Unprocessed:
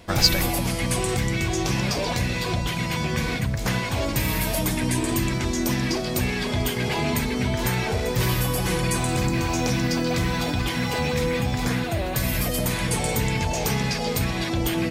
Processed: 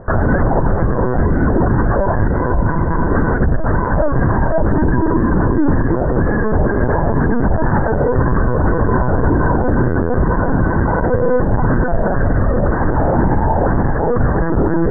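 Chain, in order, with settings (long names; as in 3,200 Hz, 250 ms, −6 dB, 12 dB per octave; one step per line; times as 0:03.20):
Butterworth low-pass 1,700 Hz 96 dB per octave
linear-prediction vocoder at 8 kHz pitch kept
boost into a limiter +17 dB
level −4 dB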